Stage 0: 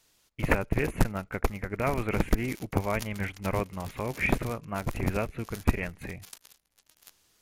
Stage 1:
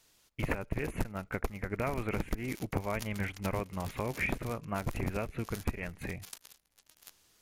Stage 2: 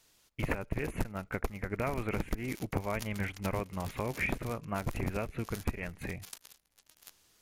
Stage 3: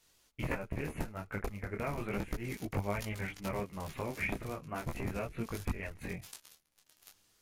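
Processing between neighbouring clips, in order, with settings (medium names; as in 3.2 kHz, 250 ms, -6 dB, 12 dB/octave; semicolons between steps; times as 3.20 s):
compression 6:1, threshold -29 dBFS, peak gain reduction 13 dB
no audible change
detune thickener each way 12 cents; trim +1 dB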